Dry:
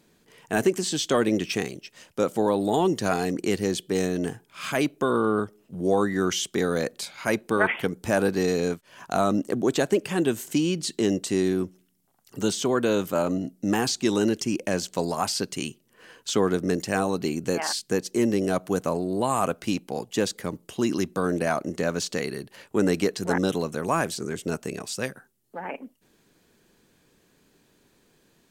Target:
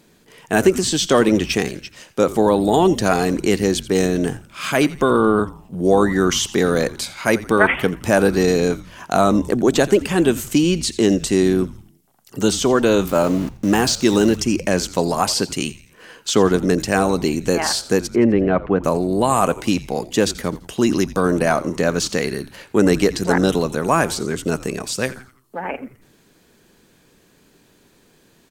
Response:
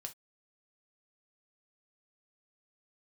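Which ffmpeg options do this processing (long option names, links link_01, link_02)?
-filter_complex "[0:a]asettb=1/sr,asplit=3[link_01][link_02][link_03];[link_01]atrim=end=13.074[link_04];[link_02]atrim=start=13.07:end=14.39,asetpts=PTS-STARTPTS,afade=type=in:duration=0.004:curve=qsin,afade=type=out:start_time=1.316:duration=0.004:curve=qsin,aeval=exprs='val(0)*gte(abs(val(0)),0.0133)':channel_layout=same[link_05];[link_03]atrim=start=14.386[link_06];[link_04][link_05]acrossfade=duration=0.004:curve1=hsin:curve2=qsin[link_07];[link_07][link_06]acrossfade=duration=0.004:curve1=qsin:curve2=hsin,asplit=3[link_08][link_09][link_10];[link_08]afade=type=out:start_time=18.06:duration=0.02[link_11];[link_09]lowpass=frequency=2500:width=0.5412,lowpass=frequency=2500:width=1.3066,afade=type=in:start_time=18.06:duration=0.02,afade=type=out:start_time=18.83:duration=0.02[link_12];[link_10]afade=type=in:start_time=18.83:duration=0.02[link_13];[link_11][link_12][link_13]amix=inputs=3:normalize=0,asplit=5[link_14][link_15][link_16][link_17][link_18];[link_15]adelay=85,afreqshift=-130,volume=-17dB[link_19];[link_16]adelay=170,afreqshift=-260,volume=-24.1dB[link_20];[link_17]adelay=255,afreqshift=-390,volume=-31.3dB[link_21];[link_18]adelay=340,afreqshift=-520,volume=-38.4dB[link_22];[link_14][link_19][link_20][link_21][link_22]amix=inputs=5:normalize=0,volume=7.5dB"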